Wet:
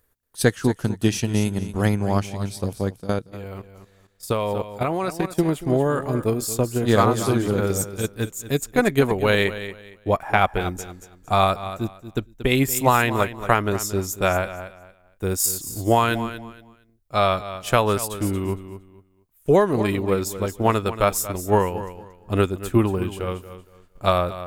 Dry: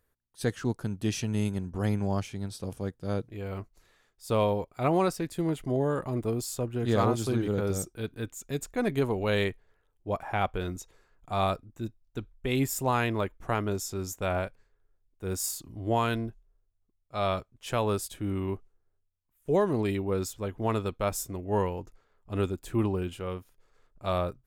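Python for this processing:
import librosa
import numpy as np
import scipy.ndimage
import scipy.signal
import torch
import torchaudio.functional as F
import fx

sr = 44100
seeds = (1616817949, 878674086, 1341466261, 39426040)

y = fx.dynamic_eq(x, sr, hz=1600.0, q=0.85, threshold_db=-39.0, ratio=4.0, max_db=4)
y = fx.echo_feedback(y, sr, ms=231, feedback_pct=25, wet_db=-11.0)
y = fx.level_steps(y, sr, step_db=10, at=(3.0, 5.38))
y = fx.transient(y, sr, attack_db=6, sustain_db=-2)
y = fx.high_shelf(y, sr, hz=7600.0, db=7.5)
y = y * 10.0 ** (5.5 / 20.0)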